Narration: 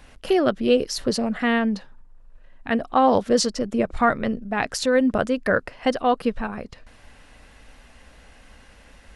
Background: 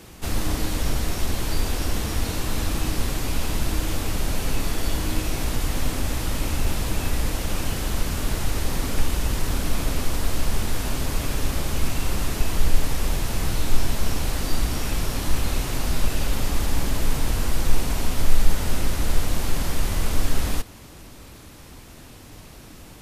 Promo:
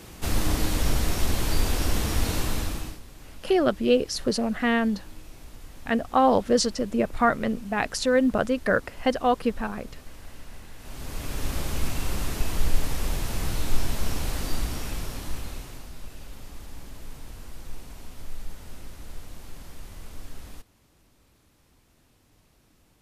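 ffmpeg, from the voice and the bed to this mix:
-filter_complex "[0:a]adelay=3200,volume=-2dB[a];[1:a]volume=17dB,afade=t=out:st=2.39:d=0.61:silence=0.0891251,afade=t=in:st=10.78:d=0.78:silence=0.141254,afade=t=out:st=14.39:d=1.51:silence=0.188365[b];[a][b]amix=inputs=2:normalize=0"

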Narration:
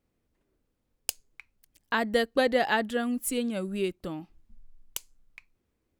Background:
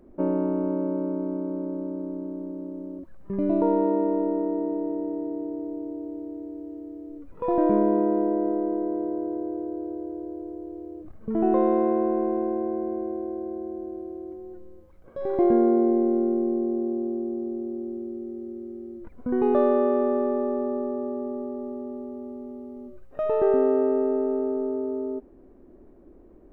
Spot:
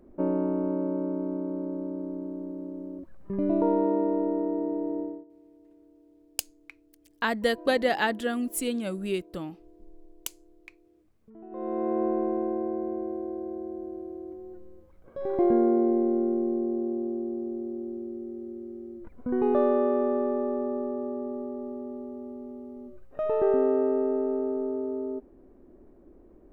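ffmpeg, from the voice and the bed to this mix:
-filter_complex "[0:a]adelay=5300,volume=0dB[a];[1:a]volume=19.5dB,afade=t=out:st=5:d=0.25:silence=0.0794328,afade=t=in:st=11.5:d=0.54:silence=0.0841395[b];[a][b]amix=inputs=2:normalize=0"

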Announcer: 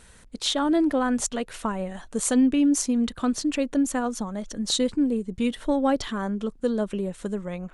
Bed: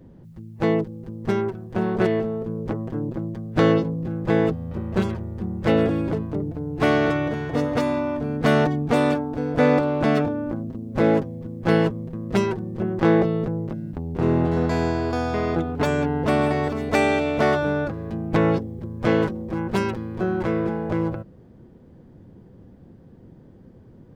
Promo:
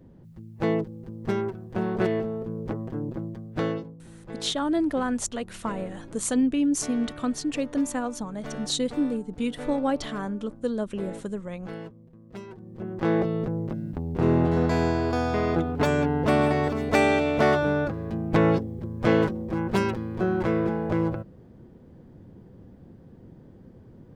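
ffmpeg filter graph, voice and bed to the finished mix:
-filter_complex "[0:a]adelay=4000,volume=-3dB[a];[1:a]volume=14.5dB,afade=t=out:st=3.17:d=0.8:silence=0.16788,afade=t=in:st=12.47:d=1.3:silence=0.11885[b];[a][b]amix=inputs=2:normalize=0"

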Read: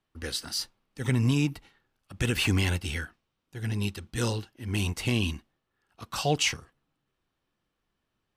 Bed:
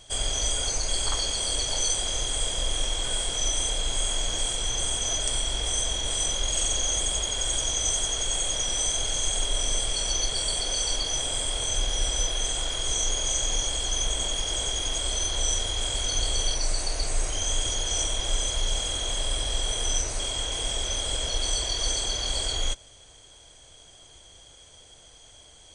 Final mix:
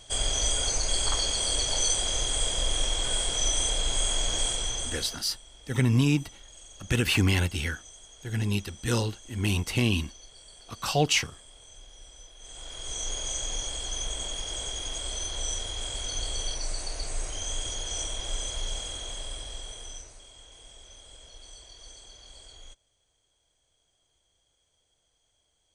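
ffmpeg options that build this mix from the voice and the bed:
-filter_complex "[0:a]adelay=4700,volume=2dB[a];[1:a]volume=17.5dB,afade=t=out:st=4.46:d=0.77:silence=0.0668344,afade=t=in:st=12.38:d=0.76:silence=0.133352,afade=t=out:st=18.64:d=1.58:silence=0.16788[b];[a][b]amix=inputs=2:normalize=0"

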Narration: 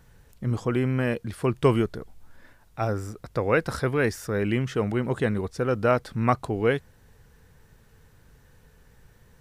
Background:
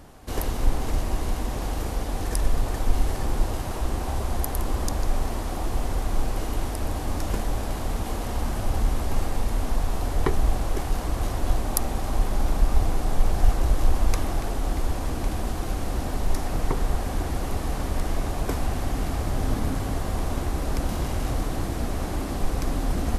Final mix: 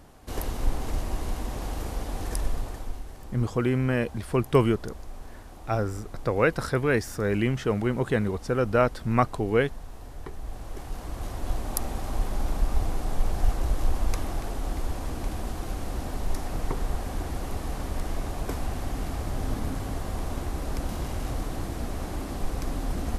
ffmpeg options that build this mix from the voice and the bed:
-filter_complex "[0:a]adelay=2900,volume=0dB[a];[1:a]volume=8dB,afade=t=out:st=2.34:d=0.68:silence=0.237137,afade=t=in:st=10.37:d=1.46:silence=0.251189[b];[a][b]amix=inputs=2:normalize=0"

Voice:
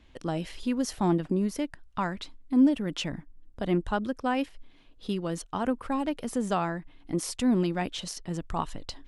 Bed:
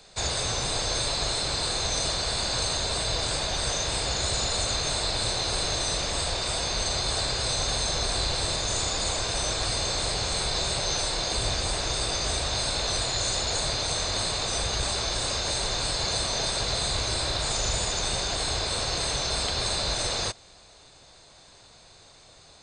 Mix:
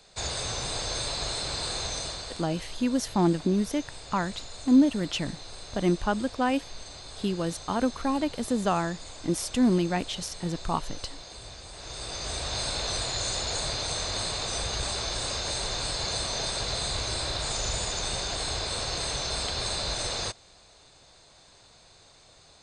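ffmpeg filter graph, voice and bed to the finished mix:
-filter_complex "[0:a]adelay=2150,volume=2dB[a];[1:a]volume=9.5dB,afade=t=out:st=1.79:d=0.68:silence=0.237137,afade=t=in:st=11.72:d=0.89:silence=0.211349[b];[a][b]amix=inputs=2:normalize=0"

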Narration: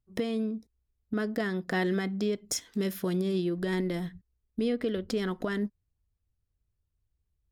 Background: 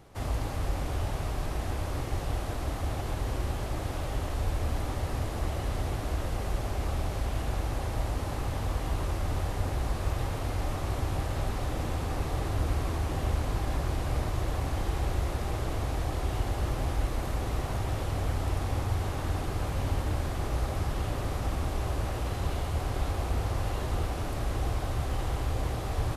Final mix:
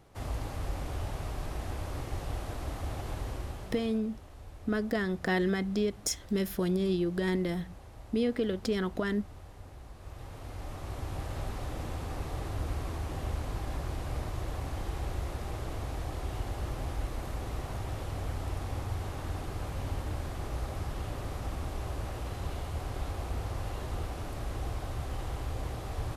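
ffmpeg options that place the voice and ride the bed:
-filter_complex "[0:a]adelay=3550,volume=0dB[a];[1:a]volume=8dB,afade=t=out:st=3.17:d=0.84:silence=0.211349,afade=t=in:st=9.96:d=1.37:silence=0.237137[b];[a][b]amix=inputs=2:normalize=0"

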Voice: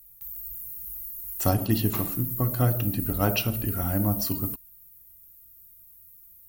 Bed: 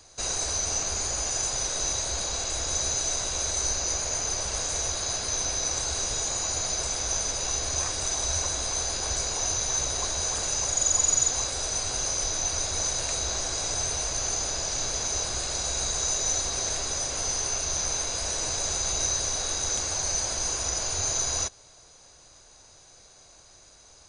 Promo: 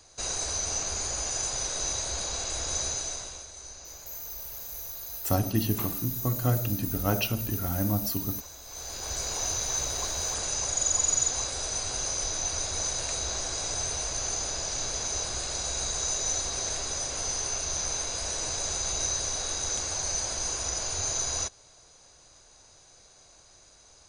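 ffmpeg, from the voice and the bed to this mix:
-filter_complex "[0:a]adelay=3850,volume=-2.5dB[a];[1:a]volume=12dB,afade=t=out:st=2.8:d=0.67:silence=0.188365,afade=t=in:st=8.65:d=0.67:silence=0.188365[b];[a][b]amix=inputs=2:normalize=0"

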